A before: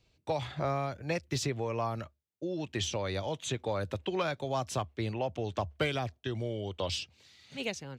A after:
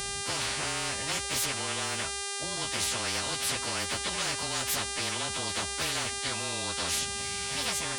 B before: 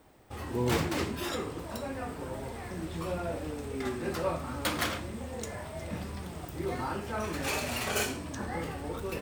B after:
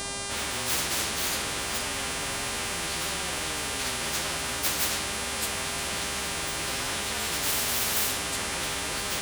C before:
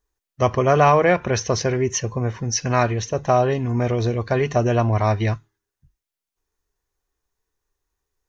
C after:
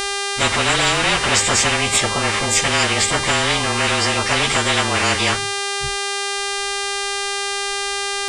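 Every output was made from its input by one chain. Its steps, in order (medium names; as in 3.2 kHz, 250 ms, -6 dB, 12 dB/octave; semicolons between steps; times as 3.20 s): frequency axis rescaled in octaves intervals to 108%; tone controls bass +7 dB, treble -8 dB; mains buzz 400 Hz, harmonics 26, -42 dBFS -6 dB/octave; spectrum-flattening compressor 10:1; trim +2.5 dB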